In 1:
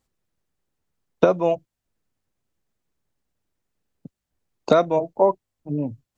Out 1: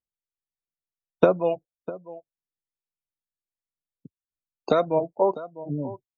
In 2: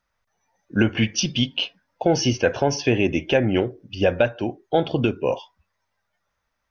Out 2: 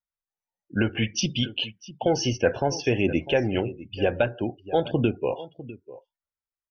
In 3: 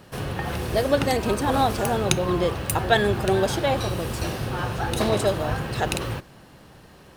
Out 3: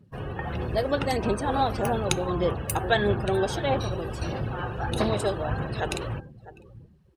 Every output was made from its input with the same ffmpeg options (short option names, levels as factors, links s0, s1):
-af "aecho=1:1:651:0.158,aphaser=in_gain=1:out_gain=1:delay=2.6:decay=0.29:speed=1.6:type=sinusoidal,afftdn=nr=23:nf=-37,volume=0.631"